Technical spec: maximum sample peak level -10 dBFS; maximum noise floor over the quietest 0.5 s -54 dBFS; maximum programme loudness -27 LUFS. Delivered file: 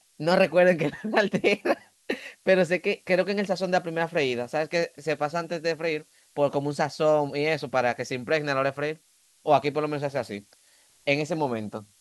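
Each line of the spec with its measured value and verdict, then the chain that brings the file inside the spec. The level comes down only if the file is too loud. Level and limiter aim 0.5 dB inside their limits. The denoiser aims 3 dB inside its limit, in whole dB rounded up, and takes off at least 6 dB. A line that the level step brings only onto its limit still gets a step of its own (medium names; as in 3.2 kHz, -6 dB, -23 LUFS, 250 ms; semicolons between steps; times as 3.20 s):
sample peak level -7.5 dBFS: fail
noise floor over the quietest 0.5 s -60 dBFS: pass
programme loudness -26.0 LUFS: fail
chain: trim -1.5 dB; peak limiter -10.5 dBFS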